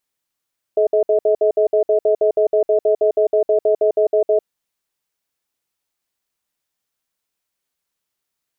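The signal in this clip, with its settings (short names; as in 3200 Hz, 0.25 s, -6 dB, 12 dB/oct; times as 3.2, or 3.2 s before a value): cadence 428 Hz, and 635 Hz, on 0.10 s, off 0.06 s, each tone -14.5 dBFS 3.67 s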